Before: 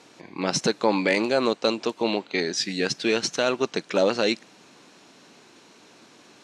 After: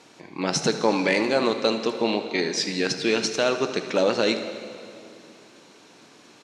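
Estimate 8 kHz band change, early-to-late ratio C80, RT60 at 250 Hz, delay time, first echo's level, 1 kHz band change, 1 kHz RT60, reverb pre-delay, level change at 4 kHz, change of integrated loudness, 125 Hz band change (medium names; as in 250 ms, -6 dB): +0.5 dB, 10.0 dB, 2.7 s, 76 ms, -14.0 dB, +0.5 dB, 2.5 s, 4 ms, +1.0 dB, +0.5 dB, +1.0 dB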